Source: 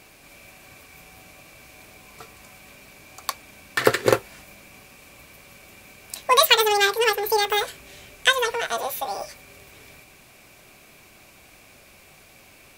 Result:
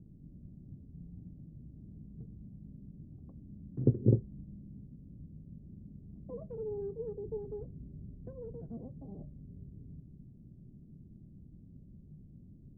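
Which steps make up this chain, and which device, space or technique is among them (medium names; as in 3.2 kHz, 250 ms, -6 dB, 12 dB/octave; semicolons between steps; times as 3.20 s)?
the neighbour's flat through the wall (low-pass 240 Hz 24 dB/octave; peaking EQ 160 Hz +5 dB 0.72 oct); trim +5 dB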